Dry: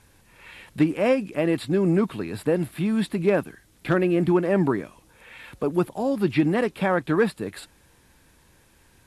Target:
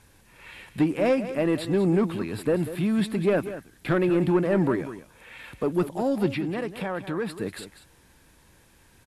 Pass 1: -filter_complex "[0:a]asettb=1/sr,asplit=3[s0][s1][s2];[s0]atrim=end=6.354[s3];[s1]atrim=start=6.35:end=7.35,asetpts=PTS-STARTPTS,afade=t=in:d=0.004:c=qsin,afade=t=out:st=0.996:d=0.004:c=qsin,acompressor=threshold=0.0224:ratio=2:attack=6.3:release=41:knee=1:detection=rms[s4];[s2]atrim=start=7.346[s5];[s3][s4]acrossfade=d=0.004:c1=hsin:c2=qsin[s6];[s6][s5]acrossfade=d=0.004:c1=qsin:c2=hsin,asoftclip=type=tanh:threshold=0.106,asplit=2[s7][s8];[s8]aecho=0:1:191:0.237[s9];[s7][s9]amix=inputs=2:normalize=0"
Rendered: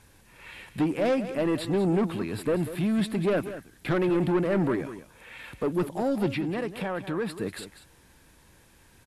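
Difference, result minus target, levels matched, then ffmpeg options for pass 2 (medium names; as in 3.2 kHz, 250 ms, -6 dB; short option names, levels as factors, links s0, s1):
saturation: distortion +7 dB
-filter_complex "[0:a]asettb=1/sr,asplit=3[s0][s1][s2];[s0]atrim=end=6.354[s3];[s1]atrim=start=6.35:end=7.35,asetpts=PTS-STARTPTS,afade=t=in:d=0.004:c=qsin,afade=t=out:st=0.996:d=0.004:c=qsin,acompressor=threshold=0.0224:ratio=2:attack=6.3:release=41:knee=1:detection=rms[s4];[s2]atrim=start=7.346[s5];[s3][s4]acrossfade=d=0.004:c1=hsin:c2=qsin[s6];[s6][s5]acrossfade=d=0.004:c1=qsin:c2=hsin,asoftclip=type=tanh:threshold=0.211,asplit=2[s7][s8];[s8]aecho=0:1:191:0.237[s9];[s7][s9]amix=inputs=2:normalize=0"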